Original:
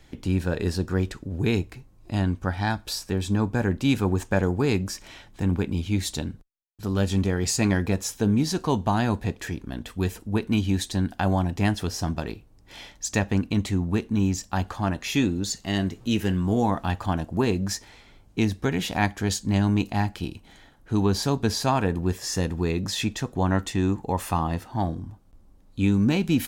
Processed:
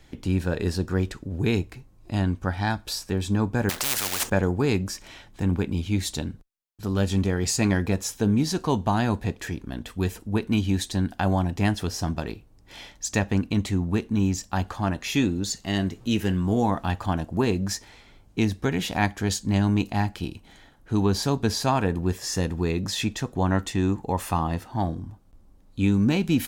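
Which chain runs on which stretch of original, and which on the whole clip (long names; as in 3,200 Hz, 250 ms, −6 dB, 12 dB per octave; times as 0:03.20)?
0:03.69–0:04.30: log-companded quantiser 6 bits + every bin compressed towards the loudest bin 10 to 1
whole clip: no processing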